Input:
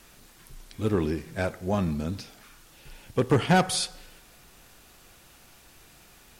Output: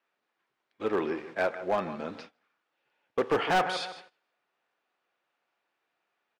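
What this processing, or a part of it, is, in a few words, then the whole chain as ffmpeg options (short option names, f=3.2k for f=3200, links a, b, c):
walkie-talkie: -af "highpass=490,lowpass=2.3k,aecho=1:1:156|312|468:0.188|0.0659|0.0231,asoftclip=type=hard:threshold=-24dB,agate=range=-24dB:threshold=-49dB:ratio=16:detection=peak,volume=4dB"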